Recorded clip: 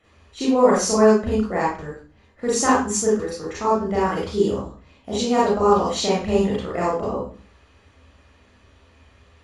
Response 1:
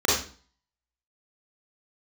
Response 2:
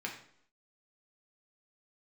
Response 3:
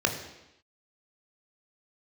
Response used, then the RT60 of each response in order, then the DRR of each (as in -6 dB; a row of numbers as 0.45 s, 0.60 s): 1; 0.40 s, 0.65 s, 0.90 s; -6.5 dB, -1.0 dB, 3.0 dB